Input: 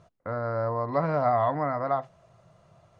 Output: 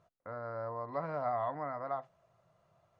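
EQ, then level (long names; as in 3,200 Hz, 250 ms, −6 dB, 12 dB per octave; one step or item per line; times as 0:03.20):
low-shelf EQ 490 Hz −9 dB
high-shelf EQ 2,100 Hz −7.5 dB
−6.5 dB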